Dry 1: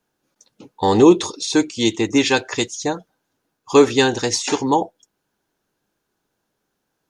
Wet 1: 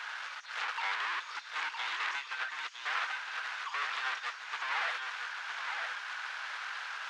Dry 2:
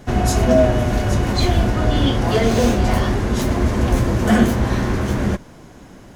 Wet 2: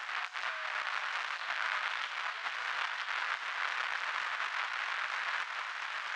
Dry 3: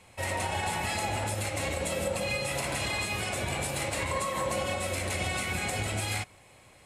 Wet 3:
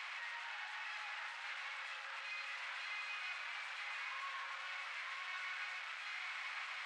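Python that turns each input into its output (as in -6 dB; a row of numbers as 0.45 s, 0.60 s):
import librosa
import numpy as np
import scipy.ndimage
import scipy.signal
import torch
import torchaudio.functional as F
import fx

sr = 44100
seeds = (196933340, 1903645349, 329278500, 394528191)

y = np.sign(x) * np.sqrt(np.mean(np.square(x)))
y = scipy.signal.sosfilt(scipy.signal.butter(4, 1300.0, 'highpass', fs=sr, output='sos'), y)
y = fx.over_compress(y, sr, threshold_db=-27.0, ratio=-0.5)
y = fx.spacing_loss(y, sr, db_at_10k=41)
y = y + 10.0 ** (-5.5 / 20.0) * np.pad(y, (int(961 * sr / 1000.0), 0))[:len(y)]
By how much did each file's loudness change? -18.0 LU, -17.0 LU, -13.0 LU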